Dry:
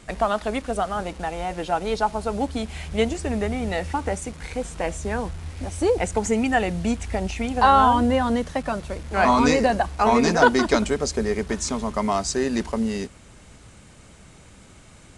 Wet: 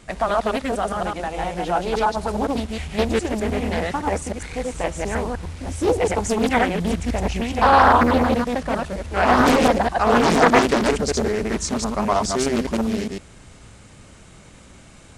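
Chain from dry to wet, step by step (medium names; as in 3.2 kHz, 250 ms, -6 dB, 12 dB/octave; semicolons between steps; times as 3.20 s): chunks repeated in reverse 103 ms, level -0.5 dB; loudspeaker Doppler distortion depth 0.76 ms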